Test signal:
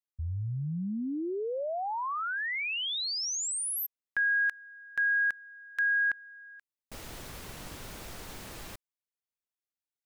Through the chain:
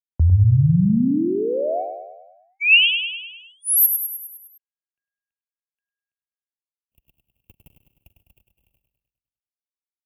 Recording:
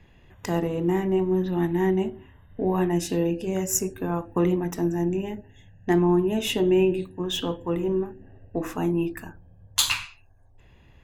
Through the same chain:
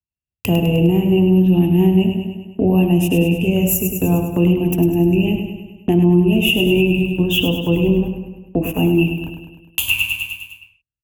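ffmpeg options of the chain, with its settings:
-filter_complex "[0:a]asplit=2[s0][s1];[s1]acompressor=threshold=0.02:ratio=6:attack=21:release=301:detection=rms,volume=1.06[s2];[s0][s2]amix=inputs=2:normalize=0,firequalizer=gain_entry='entry(230,0);entry(380,-3);entry(650,-2);entry(1200,-16);entry(1900,-18);entry(2700,13);entry(3900,-20);entry(14000,6)':delay=0.05:min_phase=1,agate=range=0.001:threshold=0.0251:ratio=16:release=80:detection=rms,lowshelf=f=150:g=11,acrossover=split=410|6700[s3][s4][s5];[s5]acontrast=66[s6];[s3][s4][s6]amix=inputs=3:normalize=0,aecho=1:1:102|204|306|408|510|612|714:0.447|0.255|0.145|0.0827|0.0472|0.0269|0.0153,alimiter=limit=0.251:level=0:latency=1:release=279,highpass=46,volume=2.11"

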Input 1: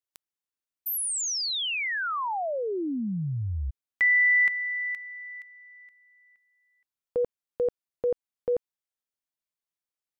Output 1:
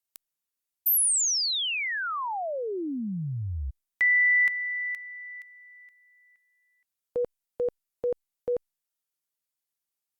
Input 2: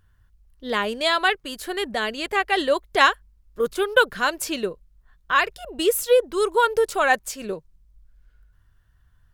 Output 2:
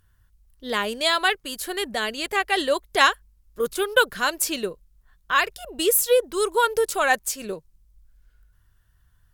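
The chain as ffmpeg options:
-af "aemphasis=mode=production:type=cd,volume=0.841" -ar 48000 -c:a libopus -b:a 128k

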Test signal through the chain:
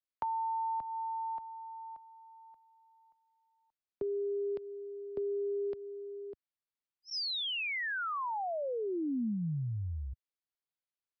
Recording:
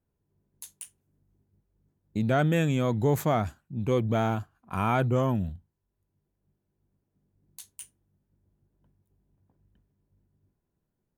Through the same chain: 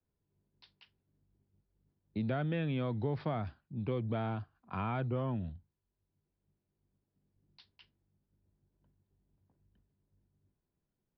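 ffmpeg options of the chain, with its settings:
-filter_complex "[0:a]aresample=11025,aresample=44100,adynamicequalizer=threshold=0.00562:dfrequency=190:dqfactor=7.3:tfrequency=190:tqfactor=7.3:attack=5:release=100:ratio=0.375:range=2.5:mode=cutabove:tftype=bell,acrossover=split=85|210[s0][s1][s2];[s0]acompressor=threshold=0.00562:ratio=4[s3];[s1]acompressor=threshold=0.0282:ratio=4[s4];[s2]acompressor=threshold=0.0355:ratio=4[s5];[s3][s4][s5]amix=inputs=3:normalize=0,volume=0.531"

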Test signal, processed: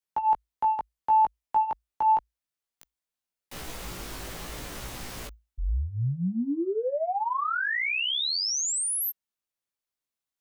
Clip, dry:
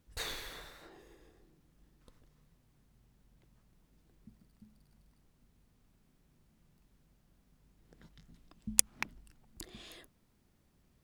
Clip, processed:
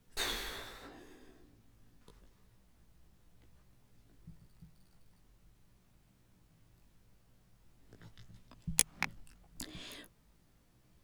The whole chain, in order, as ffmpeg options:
-af "asoftclip=type=tanh:threshold=0.211,afreqshift=-56,flanger=delay=16:depth=2.1:speed=0.82,volume=2.11"

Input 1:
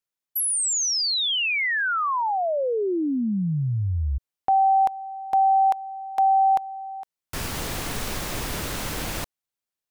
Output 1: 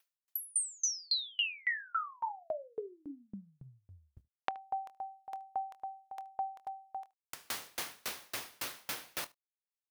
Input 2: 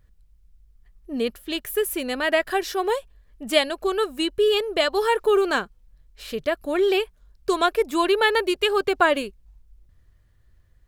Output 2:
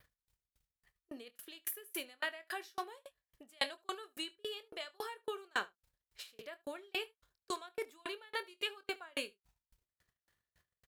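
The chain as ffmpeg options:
-filter_complex "[0:a]agate=range=0.00112:threshold=0.00631:ratio=3:release=70:detection=peak,areverse,acompressor=threshold=0.0398:ratio=6:attack=9.8:release=409:knee=1:detection=peak,areverse,asplit=2[s0][s1];[s1]adelay=25,volume=0.335[s2];[s0][s2]amix=inputs=2:normalize=0,adynamicequalizer=threshold=0.00126:dfrequency=7500:dqfactor=3.8:tfrequency=7500:tqfactor=3.8:attack=5:release=100:ratio=0.375:range=2.5:mode=cutabove:tftype=bell,acompressor=mode=upward:threshold=0.0126:ratio=2.5:attack=95:release=199:knee=2.83:detection=peak,highpass=f=1100:p=1,aecho=1:1:75:0.2,aeval=exprs='val(0)*pow(10,-37*if(lt(mod(3.6*n/s,1),2*abs(3.6)/1000),1-mod(3.6*n/s,1)/(2*abs(3.6)/1000),(mod(3.6*n/s,1)-2*abs(3.6)/1000)/(1-2*abs(3.6)/1000))/20)':c=same,volume=1.41"

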